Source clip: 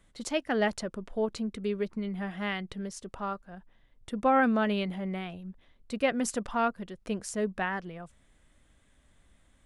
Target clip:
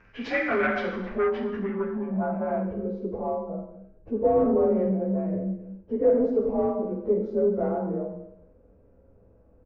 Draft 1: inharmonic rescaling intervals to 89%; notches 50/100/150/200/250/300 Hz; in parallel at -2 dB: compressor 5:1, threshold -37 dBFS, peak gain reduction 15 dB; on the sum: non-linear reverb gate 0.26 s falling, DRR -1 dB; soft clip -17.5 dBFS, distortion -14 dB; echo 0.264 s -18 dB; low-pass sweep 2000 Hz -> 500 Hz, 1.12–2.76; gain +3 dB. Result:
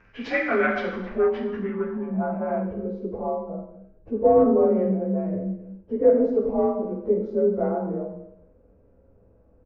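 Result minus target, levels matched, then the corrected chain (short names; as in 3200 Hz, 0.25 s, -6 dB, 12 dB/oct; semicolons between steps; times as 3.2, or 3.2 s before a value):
soft clip: distortion -6 dB
inharmonic rescaling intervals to 89%; notches 50/100/150/200/250/300 Hz; in parallel at -2 dB: compressor 5:1, threshold -37 dBFS, peak gain reduction 15 dB; on the sum: non-linear reverb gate 0.26 s falling, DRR -1 dB; soft clip -24 dBFS, distortion -8 dB; echo 0.264 s -18 dB; low-pass sweep 2000 Hz -> 500 Hz, 1.12–2.76; gain +3 dB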